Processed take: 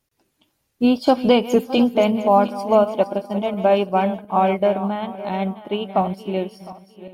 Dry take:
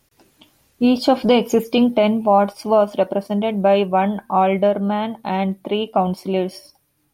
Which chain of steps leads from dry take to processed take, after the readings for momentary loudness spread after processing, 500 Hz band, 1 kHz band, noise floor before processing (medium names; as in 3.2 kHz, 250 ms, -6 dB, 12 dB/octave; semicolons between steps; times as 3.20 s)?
9 LU, -1.0 dB, -1.0 dB, -64 dBFS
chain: backward echo that repeats 354 ms, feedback 58%, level -10 dB; upward expansion 1.5:1, over -35 dBFS